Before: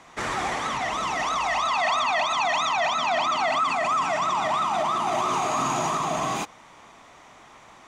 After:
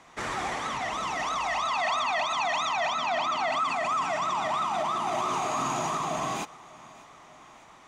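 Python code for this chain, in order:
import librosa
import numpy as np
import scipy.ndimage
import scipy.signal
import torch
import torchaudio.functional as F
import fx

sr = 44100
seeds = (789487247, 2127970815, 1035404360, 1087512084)

p1 = fx.high_shelf(x, sr, hz=8900.0, db=-6.5, at=(2.92, 3.52))
p2 = p1 + fx.echo_feedback(p1, sr, ms=595, feedback_pct=58, wet_db=-22.0, dry=0)
y = p2 * 10.0 ** (-4.0 / 20.0)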